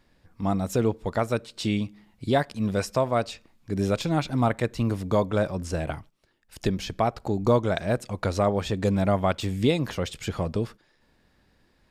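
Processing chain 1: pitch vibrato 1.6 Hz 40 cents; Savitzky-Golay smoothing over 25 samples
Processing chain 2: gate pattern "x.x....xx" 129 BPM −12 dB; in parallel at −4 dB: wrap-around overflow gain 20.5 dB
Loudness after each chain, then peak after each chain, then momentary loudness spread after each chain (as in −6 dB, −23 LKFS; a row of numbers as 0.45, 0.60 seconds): −27.0, −27.5 LKFS; −9.5, −9.5 dBFS; 8, 14 LU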